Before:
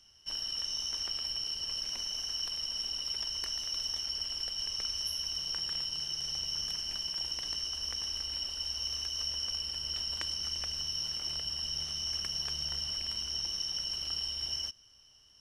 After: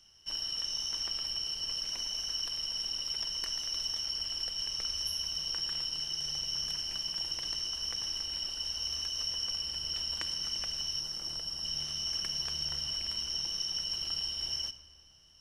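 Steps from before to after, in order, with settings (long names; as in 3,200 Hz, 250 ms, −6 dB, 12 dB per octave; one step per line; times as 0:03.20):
0:11.00–0:11.65: parametric band 2,700 Hz −6.5 dB 1.4 octaves
rectangular room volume 3,900 cubic metres, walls mixed, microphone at 0.71 metres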